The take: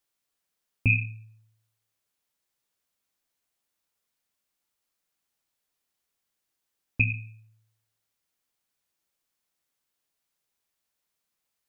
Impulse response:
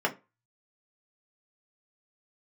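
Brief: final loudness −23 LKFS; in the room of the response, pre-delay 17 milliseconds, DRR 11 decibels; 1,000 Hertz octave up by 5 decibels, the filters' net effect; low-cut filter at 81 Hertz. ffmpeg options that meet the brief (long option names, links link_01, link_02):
-filter_complex "[0:a]highpass=81,equalizer=frequency=1000:width_type=o:gain=6.5,asplit=2[link_01][link_02];[1:a]atrim=start_sample=2205,adelay=17[link_03];[link_02][link_03]afir=irnorm=-1:irlink=0,volume=-21.5dB[link_04];[link_01][link_04]amix=inputs=2:normalize=0,volume=3.5dB"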